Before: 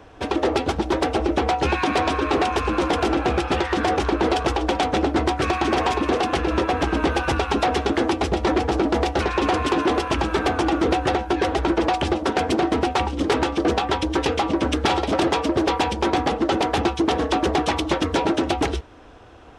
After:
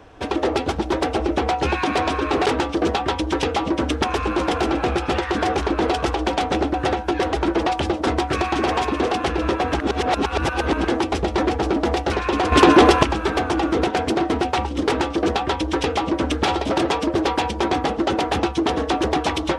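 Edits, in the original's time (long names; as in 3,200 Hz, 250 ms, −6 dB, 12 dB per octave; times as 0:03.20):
0:06.89–0:07.97: reverse
0:09.61–0:10.12: clip gain +9 dB
0:10.96–0:12.29: move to 0:05.16
0:13.29–0:14.87: duplicate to 0:02.46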